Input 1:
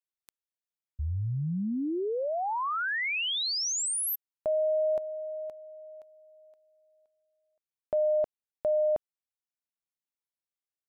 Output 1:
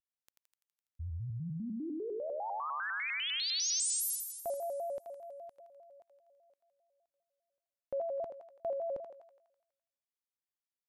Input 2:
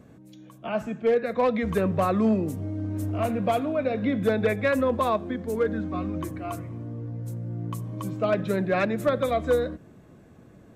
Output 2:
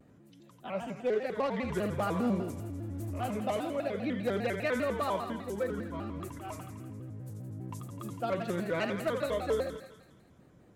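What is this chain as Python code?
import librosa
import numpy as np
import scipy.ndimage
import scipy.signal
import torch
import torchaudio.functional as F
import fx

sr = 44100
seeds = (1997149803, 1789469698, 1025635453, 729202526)

p1 = fx.dynamic_eq(x, sr, hz=6600.0, q=0.79, threshold_db=-49.0, ratio=4.0, max_db=5)
p2 = p1 + fx.echo_thinned(p1, sr, ms=83, feedback_pct=68, hz=490.0, wet_db=-5.5, dry=0)
p3 = fx.vibrato_shape(p2, sr, shape='square', rate_hz=5.0, depth_cents=160.0)
y = F.gain(torch.from_numpy(p3), -8.5).numpy()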